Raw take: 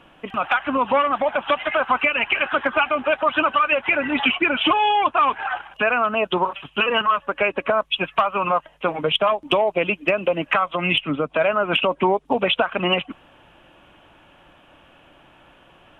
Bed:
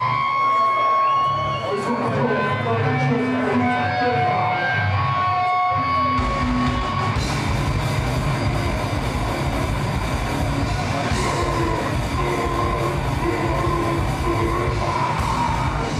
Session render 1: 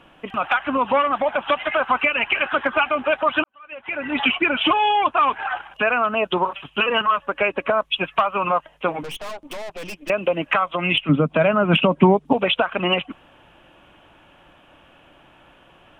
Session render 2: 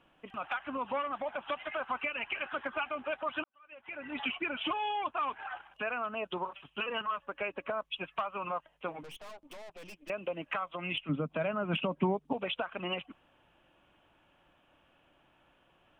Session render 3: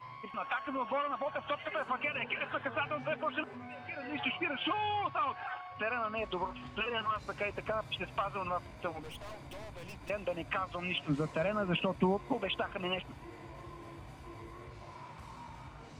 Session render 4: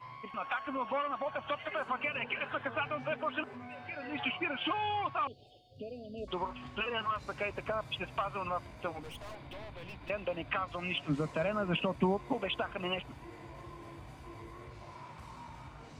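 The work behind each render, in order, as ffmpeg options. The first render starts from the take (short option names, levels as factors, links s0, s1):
-filter_complex "[0:a]asettb=1/sr,asplit=3[s0][s1][s2];[s0]atrim=end=9.034[s3];[s1]atrim=start=9.03:end=10.1,asetpts=PTS-STARTPTS,afade=t=in:d=0.004:c=qsin,afade=t=out:st=1.066:d=0.004:c=qsin,aeval=exprs='(tanh(35.5*val(0)+0.7)-tanh(0.7))/35.5':c=same[s4];[s2]atrim=start=10.096[s5];[s3][s4]acrossfade=d=0.004:c1=hsin:c2=qsin[s6];[s6][s5]acrossfade=d=0.004:c1=qsin:c2=hsin,asettb=1/sr,asplit=3[s7][s8][s9];[s7]atrim=end=11.094[s10];[s8]atrim=start=11.09:end=12.33,asetpts=PTS-STARTPTS,afade=t=in:d=0.004:c=qsin,afade=t=out:st=1.236:d=0.004:c=qsin,equalizer=f=170:t=o:w=1.4:g=14[s11];[s9]atrim=start=12.326[s12];[s10][s11]acrossfade=d=0.004:c1=hsin:c2=qsin[s13];[s13][s12]acrossfade=d=0.004:c1=qsin:c2=hsin,asplit=2[s14][s15];[s14]atrim=end=3.44,asetpts=PTS-STARTPTS,afade=t=out:st=3.436:d=0.004:c=hsin[s16];[s15]atrim=start=3.44,asetpts=PTS-STARTPTS,afade=t=in:d=0.77:c=qua[s17];[s16][s17]concat=n=2:v=0:a=1"
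-af "volume=0.168"
-filter_complex "[1:a]volume=0.0398[s0];[0:a][s0]amix=inputs=2:normalize=0"
-filter_complex "[0:a]asettb=1/sr,asplit=3[s0][s1][s2];[s0]atrim=end=5.274[s3];[s1]atrim=start=5.27:end=6.28,asetpts=PTS-STARTPTS,afade=t=in:d=0.004:c=qsin,afade=t=out:st=1.006:d=0.004:c=qsin,asuperstop=centerf=1400:order=12:qfactor=0.5[s4];[s2]atrim=start=6.276[s5];[s3][s4]acrossfade=d=0.004:c1=hsin:c2=qsin[s6];[s6][s5]acrossfade=d=0.004:c1=qsin:c2=hsin,asettb=1/sr,asplit=3[s7][s8][s9];[s7]atrim=end=9.354[s10];[s8]atrim=start=9.35:end=10.68,asetpts=PTS-STARTPTS,afade=t=in:d=0.004:c=qsin,afade=t=out:st=1.326:d=0.004:c=qsin,highshelf=f=4900:t=q:w=1.5:g=-8.5[s11];[s9]atrim=start=10.676[s12];[s10][s11]acrossfade=d=0.004:c1=hsin:c2=qsin[s13];[s13][s12]acrossfade=d=0.004:c1=qsin:c2=hsin"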